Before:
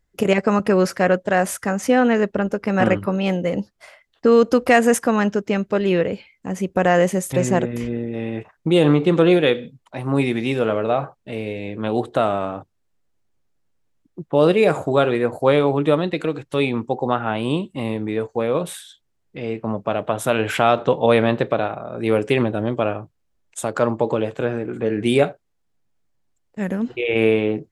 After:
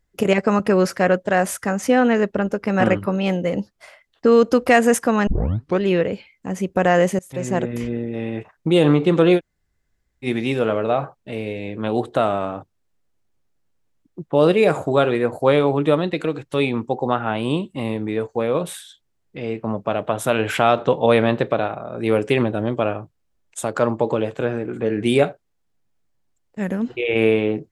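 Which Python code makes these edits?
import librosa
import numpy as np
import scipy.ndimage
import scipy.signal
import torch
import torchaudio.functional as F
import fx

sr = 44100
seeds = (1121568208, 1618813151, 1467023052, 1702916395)

y = fx.edit(x, sr, fx.tape_start(start_s=5.27, length_s=0.53),
    fx.fade_in_from(start_s=7.19, length_s=0.53, floor_db=-22.5),
    fx.room_tone_fill(start_s=9.38, length_s=0.87, crossfade_s=0.06), tone=tone)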